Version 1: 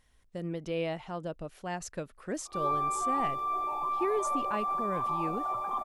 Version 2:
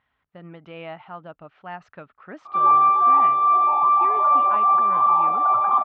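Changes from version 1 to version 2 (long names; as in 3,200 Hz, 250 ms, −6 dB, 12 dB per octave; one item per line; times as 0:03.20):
background +10.0 dB
master: add loudspeaker in its box 130–3,000 Hz, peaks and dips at 160 Hz −3 dB, 220 Hz −5 dB, 350 Hz −7 dB, 500 Hz −7 dB, 840 Hz +4 dB, 1,300 Hz +8 dB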